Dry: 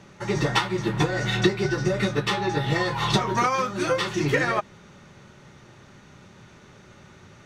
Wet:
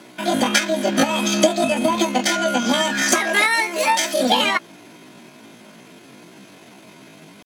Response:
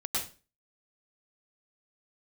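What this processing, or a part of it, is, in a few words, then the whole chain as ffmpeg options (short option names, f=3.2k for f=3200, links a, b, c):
chipmunk voice: -filter_complex "[0:a]asetrate=76340,aresample=44100,atempo=0.577676,highpass=f=120:w=0.5412,highpass=f=120:w=1.3066,asettb=1/sr,asplit=3[a][b][c];[a]atrim=end=3.024[d];[b]atrim=start=3.02:end=4.2,asetpts=PTS-STARTPTS,afade=t=in:d=0.004:c=qsin,afade=t=out:st=1.176:d=0.004:c=qsin,bass=f=250:g=-10,treble=f=4k:g=3[e];[c]atrim=start=4.196[f];[d][e]acrossfade=d=0.004:c1=hsin:c2=qsin[g];[g][f]acrossfade=d=0.004:c1=qsin:c2=hsin,volume=5.5dB"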